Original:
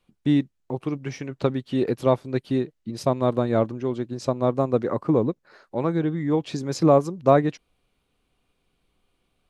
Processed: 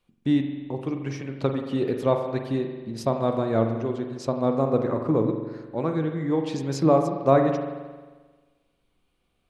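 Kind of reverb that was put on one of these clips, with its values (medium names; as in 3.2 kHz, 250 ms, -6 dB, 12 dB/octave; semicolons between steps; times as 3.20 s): spring tank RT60 1.4 s, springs 44 ms, chirp 35 ms, DRR 4.5 dB; trim -2.5 dB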